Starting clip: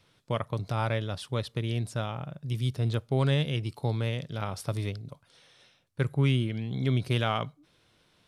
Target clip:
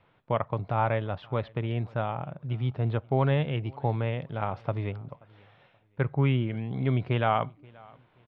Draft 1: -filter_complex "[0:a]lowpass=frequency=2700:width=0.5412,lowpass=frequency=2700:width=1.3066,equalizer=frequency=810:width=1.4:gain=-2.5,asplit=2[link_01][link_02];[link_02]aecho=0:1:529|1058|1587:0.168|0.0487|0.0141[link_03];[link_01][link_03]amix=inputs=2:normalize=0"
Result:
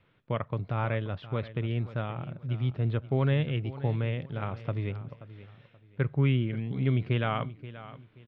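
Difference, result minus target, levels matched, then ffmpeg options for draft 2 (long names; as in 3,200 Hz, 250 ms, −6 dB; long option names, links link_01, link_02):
echo-to-direct +10 dB; 1,000 Hz band −6.0 dB
-filter_complex "[0:a]lowpass=frequency=2700:width=0.5412,lowpass=frequency=2700:width=1.3066,equalizer=frequency=810:width=1.4:gain=7.5,asplit=2[link_01][link_02];[link_02]aecho=0:1:529|1058:0.0531|0.0154[link_03];[link_01][link_03]amix=inputs=2:normalize=0"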